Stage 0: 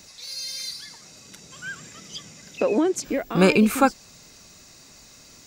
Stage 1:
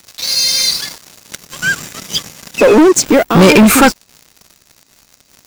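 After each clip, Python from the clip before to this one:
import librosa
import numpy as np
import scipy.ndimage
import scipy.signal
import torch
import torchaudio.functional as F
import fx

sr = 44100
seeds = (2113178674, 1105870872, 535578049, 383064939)

y = fx.leveller(x, sr, passes=5)
y = y * librosa.db_to_amplitude(1.5)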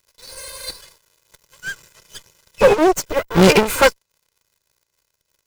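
y = fx.lower_of_two(x, sr, delay_ms=2.0)
y = fx.upward_expand(y, sr, threshold_db=-18.0, expansion=2.5)
y = y * librosa.db_to_amplitude(-1.0)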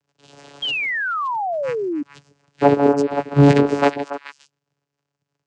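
y = fx.echo_stepped(x, sr, ms=142, hz=330.0, octaves=1.4, feedback_pct=70, wet_db=-3.5)
y = fx.vocoder(y, sr, bands=8, carrier='saw', carrier_hz=142.0)
y = fx.spec_paint(y, sr, seeds[0], shape='fall', start_s=0.62, length_s=1.41, low_hz=280.0, high_hz=3300.0, level_db=-22.0)
y = y * librosa.db_to_amplitude(-1.0)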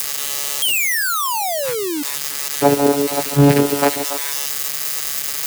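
y = x + 0.5 * 10.0 ** (-10.0 / 20.0) * np.diff(np.sign(x), prepend=np.sign(x[:1]))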